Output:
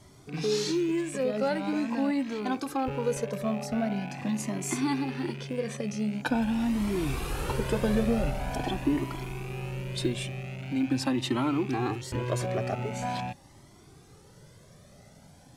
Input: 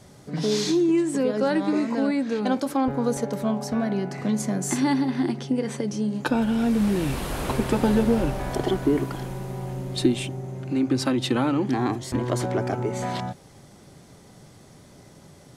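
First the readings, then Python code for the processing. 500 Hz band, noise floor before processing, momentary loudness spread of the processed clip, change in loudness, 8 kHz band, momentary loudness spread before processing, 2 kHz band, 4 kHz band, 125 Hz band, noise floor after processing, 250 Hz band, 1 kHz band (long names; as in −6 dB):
−5.0 dB, −50 dBFS, 7 LU, −5.5 dB, −4.5 dB, 8 LU, −3.0 dB, −4.0 dB, −4.0 dB, −54 dBFS, −6.0 dB, −4.0 dB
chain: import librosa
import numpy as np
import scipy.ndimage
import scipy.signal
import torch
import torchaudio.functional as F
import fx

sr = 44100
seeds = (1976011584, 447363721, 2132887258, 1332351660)

y = fx.rattle_buzz(x, sr, strikes_db=-34.0, level_db=-30.0)
y = fx.quant_float(y, sr, bits=6)
y = fx.comb_cascade(y, sr, direction='rising', hz=0.44)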